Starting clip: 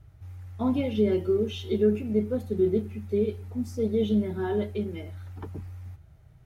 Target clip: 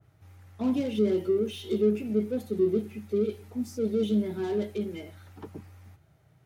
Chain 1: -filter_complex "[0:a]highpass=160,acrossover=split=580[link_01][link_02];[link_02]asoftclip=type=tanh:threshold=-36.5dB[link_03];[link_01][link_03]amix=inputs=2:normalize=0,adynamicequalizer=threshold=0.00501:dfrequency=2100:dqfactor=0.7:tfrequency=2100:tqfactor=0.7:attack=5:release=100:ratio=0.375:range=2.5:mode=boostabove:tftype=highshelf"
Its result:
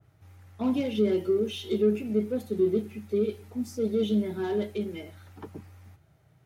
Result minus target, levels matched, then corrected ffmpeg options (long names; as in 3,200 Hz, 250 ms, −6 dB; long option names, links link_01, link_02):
soft clipping: distortion −6 dB
-filter_complex "[0:a]highpass=160,acrossover=split=580[link_01][link_02];[link_02]asoftclip=type=tanh:threshold=-43dB[link_03];[link_01][link_03]amix=inputs=2:normalize=0,adynamicequalizer=threshold=0.00501:dfrequency=2100:dqfactor=0.7:tfrequency=2100:tqfactor=0.7:attack=5:release=100:ratio=0.375:range=2.5:mode=boostabove:tftype=highshelf"